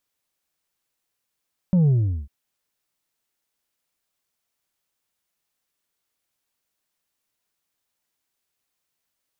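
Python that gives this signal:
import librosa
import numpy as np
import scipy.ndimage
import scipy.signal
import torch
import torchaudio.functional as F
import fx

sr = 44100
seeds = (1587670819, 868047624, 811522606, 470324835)

y = fx.sub_drop(sr, level_db=-14.5, start_hz=190.0, length_s=0.55, drive_db=3.5, fade_s=0.4, end_hz=65.0)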